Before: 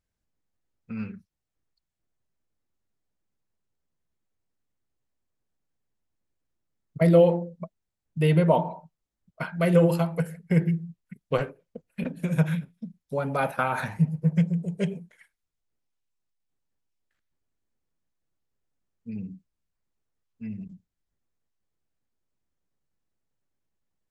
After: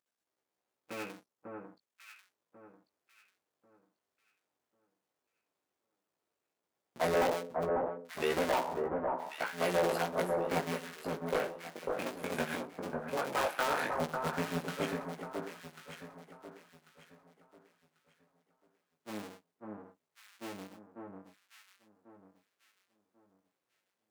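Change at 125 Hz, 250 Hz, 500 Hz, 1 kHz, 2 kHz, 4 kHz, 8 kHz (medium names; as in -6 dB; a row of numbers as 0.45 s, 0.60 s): -20.0 dB, -13.0 dB, -7.0 dB, -2.0 dB, -2.0 dB, +2.0 dB, no reading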